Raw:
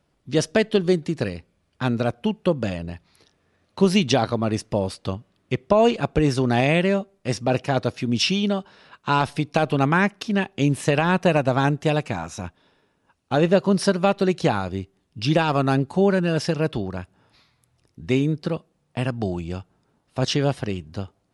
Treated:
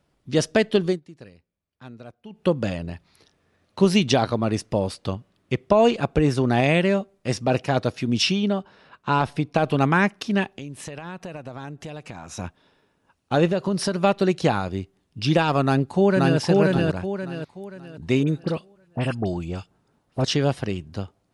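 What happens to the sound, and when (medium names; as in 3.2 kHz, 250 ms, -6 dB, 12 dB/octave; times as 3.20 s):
0.85–2.45 s: dip -19 dB, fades 0.15 s
6.03–6.64 s: dynamic bell 5.5 kHz, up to -4 dB, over -39 dBFS, Q 0.7
8.32–9.64 s: treble shelf 2.7 kHz -7.5 dB
10.50–12.33 s: compression 5:1, threshold -34 dBFS
13.51–13.97 s: compression 4:1, threshold -19 dBFS
15.63–16.38 s: echo throw 530 ms, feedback 35%, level -1 dB
18.23–20.24 s: phase dispersion highs, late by 47 ms, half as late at 1.8 kHz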